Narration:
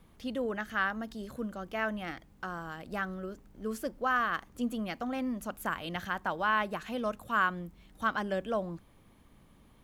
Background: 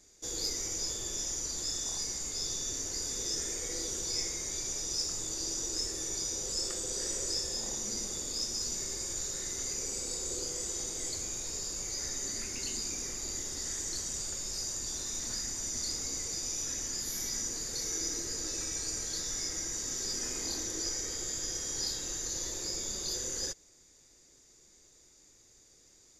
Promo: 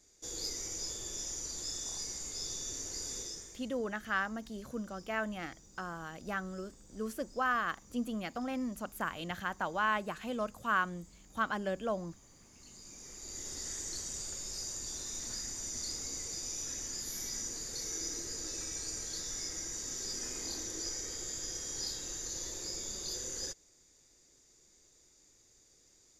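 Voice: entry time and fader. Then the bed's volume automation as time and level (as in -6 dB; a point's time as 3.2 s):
3.35 s, -2.5 dB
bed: 3.18 s -4.5 dB
3.8 s -26.5 dB
12.34 s -26.5 dB
13.49 s -4 dB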